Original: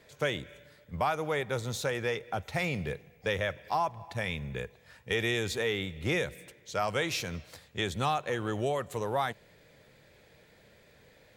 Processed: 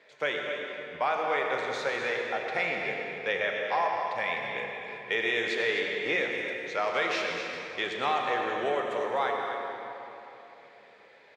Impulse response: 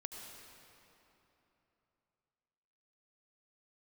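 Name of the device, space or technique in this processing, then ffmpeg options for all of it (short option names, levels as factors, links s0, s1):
station announcement: -filter_complex "[0:a]highpass=390,lowpass=3900,equalizer=f=2100:t=o:w=0.54:g=4,aecho=1:1:34.99|253.6:0.251|0.355[s0];[1:a]atrim=start_sample=2205[s1];[s0][s1]afir=irnorm=-1:irlink=0,volume=1.88"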